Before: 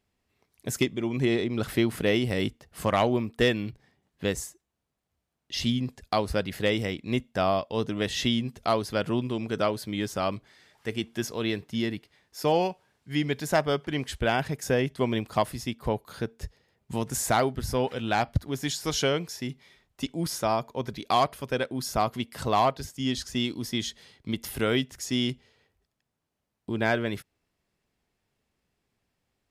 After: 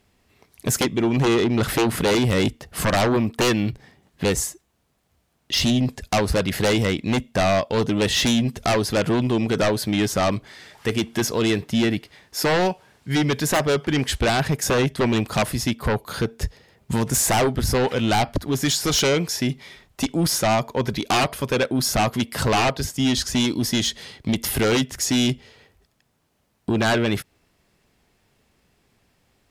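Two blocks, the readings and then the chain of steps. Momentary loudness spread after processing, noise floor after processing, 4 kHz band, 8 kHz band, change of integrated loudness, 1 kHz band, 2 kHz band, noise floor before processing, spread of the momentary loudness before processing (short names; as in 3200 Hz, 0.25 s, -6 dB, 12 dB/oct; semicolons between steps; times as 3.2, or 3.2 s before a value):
7 LU, -68 dBFS, +8.0 dB, +11.5 dB, +6.5 dB, +4.0 dB, +7.0 dB, -82 dBFS, 10 LU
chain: in parallel at -3 dB: compressor, threshold -35 dBFS, peak gain reduction 16 dB; on the sum: sine folder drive 10 dB, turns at -10.5 dBFS; gain -4.5 dB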